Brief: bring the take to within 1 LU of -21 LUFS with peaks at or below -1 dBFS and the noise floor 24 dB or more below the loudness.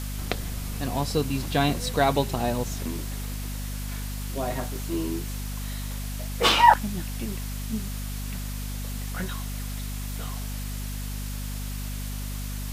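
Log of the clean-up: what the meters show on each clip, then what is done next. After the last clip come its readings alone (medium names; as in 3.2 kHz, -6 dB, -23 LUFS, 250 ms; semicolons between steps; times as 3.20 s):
hum 50 Hz; highest harmonic 250 Hz; hum level -30 dBFS; noise floor -32 dBFS; noise floor target -52 dBFS; loudness -28.0 LUFS; peak level -2.5 dBFS; loudness target -21.0 LUFS
-> hum notches 50/100/150/200/250 Hz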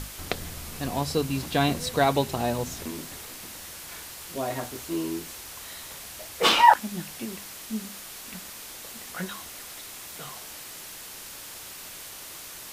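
hum not found; noise floor -42 dBFS; noise floor target -53 dBFS
-> noise print and reduce 11 dB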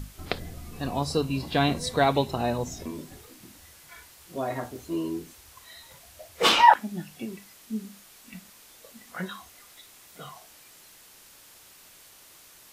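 noise floor -53 dBFS; loudness -26.5 LUFS; peak level -2.5 dBFS; loudness target -21.0 LUFS
-> trim +5.5 dB; peak limiter -1 dBFS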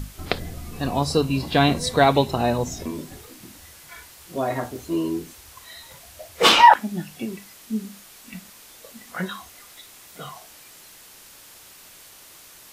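loudness -21.0 LUFS; peak level -1.0 dBFS; noise floor -47 dBFS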